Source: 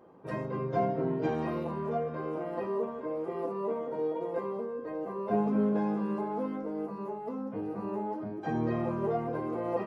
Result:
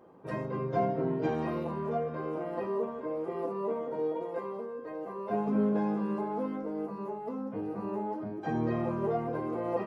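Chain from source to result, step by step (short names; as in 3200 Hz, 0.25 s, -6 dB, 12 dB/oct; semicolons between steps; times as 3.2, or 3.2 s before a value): 4.22–5.48 low shelf 460 Hz -5.5 dB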